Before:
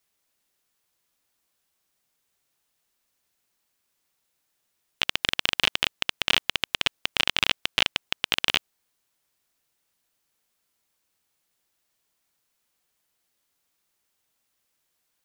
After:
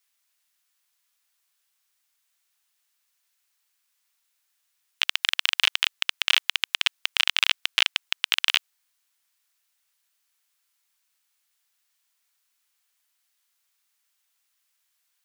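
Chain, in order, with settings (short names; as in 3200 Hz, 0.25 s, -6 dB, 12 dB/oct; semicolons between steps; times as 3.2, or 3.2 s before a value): HPF 1200 Hz 12 dB/oct; gain +2 dB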